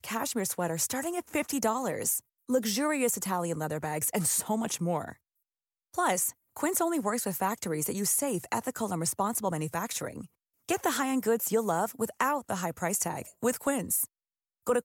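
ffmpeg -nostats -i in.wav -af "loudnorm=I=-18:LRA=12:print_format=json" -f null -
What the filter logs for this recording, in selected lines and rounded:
"input_i" : "-30.0",
"input_tp" : "-14.5",
"input_lra" : "1.5",
"input_thresh" : "-40.2",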